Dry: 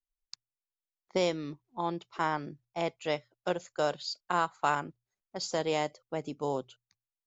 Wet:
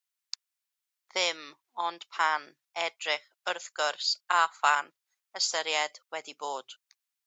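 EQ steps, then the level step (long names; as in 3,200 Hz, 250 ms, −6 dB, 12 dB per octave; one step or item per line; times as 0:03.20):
high-pass filter 1,200 Hz 12 dB per octave
+9.0 dB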